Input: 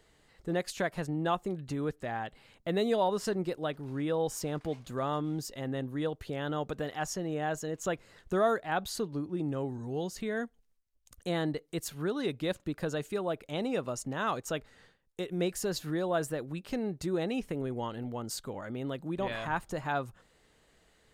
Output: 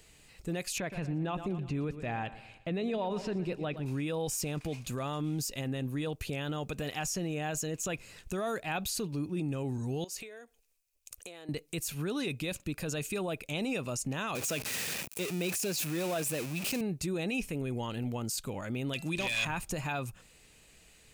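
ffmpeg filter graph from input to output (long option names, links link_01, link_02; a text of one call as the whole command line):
ffmpeg -i in.wav -filter_complex "[0:a]asettb=1/sr,asplit=3[link_01][link_02][link_03];[link_01]atrim=end=0.784[link_04];[link_02]atrim=start=0.78:end=3.86,asetpts=PTS-STARTPTS,afade=type=in:duration=0.004:curve=qsin,afade=type=out:start_time=3.076:duration=0.004:curve=qsin,acrossover=split=4500[link_05][link_06];[link_06]acompressor=threshold=-59dB:ratio=4:attack=1:release=60[link_07];[link_05][link_07]amix=inputs=2:normalize=0,aemphasis=mode=reproduction:type=75kf,aecho=1:1:118|236|354|472:0.168|0.0789|0.0371|0.0174,atrim=end_sample=135828[link_08];[link_03]atrim=start=3.856[link_09];[link_04][link_08]acrossfade=duration=0.004:curve1=hsin:curve2=qsin[link_10];[link_10][link_09]acrossfade=duration=0.004:curve1=qsin:curve2=hsin,asettb=1/sr,asplit=3[link_11][link_12][link_13];[link_11]atrim=end=10.044[link_14];[link_12]atrim=start=10.04:end=11.49,asetpts=PTS-STARTPTS,afade=type=in:duration=0.004:curve=qsin,afade=type=out:start_time=1.446:duration=0.004:curve=qsin,lowshelf=frequency=290:width_type=q:width=1.5:gain=-12,acompressor=threshold=-46dB:ratio=12:attack=3.2:release=140:knee=1:detection=peak[link_15];[link_13]atrim=start=11.486[link_16];[link_14][link_15]acrossfade=duration=0.004:curve1=hsin:curve2=qsin[link_17];[link_17][link_16]acrossfade=duration=0.004:curve1=qsin:curve2=hsin,asettb=1/sr,asplit=3[link_18][link_19][link_20];[link_18]atrim=end=14.354[link_21];[link_19]atrim=start=14.35:end=16.81,asetpts=PTS-STARTPTS,afade=type=in:duration=0.004:curve=qsin,afade=type=out:start_time=2.456:duration=0.004:curve=qsin,aeval=exprs='val(0)+0.5*0.02*sgn(val(0))':channel_layout=same,highpass=140,equalizer=frequency=680:width=6.3:gain=3[link_22];[link_20]atrim=start=16.806[link_23];[link_21][link_22]acrossfade=duration=0.004:curve1=hsin:curve2=qsin[link_24];[link_24][link_23]acrossfade=duration=0.004:curve1=qsin:curve2=hsin,asettb=1/sr,asplit=3[link_25][link_26][link_27];[link_25]atrim=end=18.934[link_28];[link_26]atrim=start=18.93:end=19.45,asetpts=PTS-STARTPTS,afade=type=in:duration=0.004:curve=qsin,afade=type=out:start_time=0.516:duration=0.004:curve=qsin,equalizer=frequency=5000:width_type=o:width=2.5:gain=14.5,bandreject=frequency=336.1:width_type=h:width=4,bandreject=frequency=672.2:width_type=h:width=4,bandreject=frequency=1008.3:width_type=h:width=4,bandreject=frequency=1344.4:width_type=h:width=4,bandreject=frequency=1680.5:width_type=h:width=4,bandreject=frequency=2016.6:width_type=h:width=4,bandreject=frequency=2352.7:width_type=h:width=4,bandreject=frequency=2688.8:width_type=h:width=4,bandreject=frequency=3024.9:width_type=h:width=4,aeval=exprs='0.0708*(abs(mod(val(0)/0.0708+3,4)-2)-1)':channel_layout=same[link_29];[link_27]atrim=start=19.446[link_30];[link_28][link_29]acrossfade=duration=0.004:curve1=hsin:curve2=qsin[link_31];[link_31][link_30]acrossfade=duration=0.004:curve1=qsin:curve2=hsin,bass=frequency=250:gain=6,treble=frequency=4000:gain=13,alimiter=level_in=2dB:limit=-24dB:level=0:latency=1:release=21,volume=-2dB,equalizer=frequency=2500:width_type=o:width=0.27:gain=14.5" out.wav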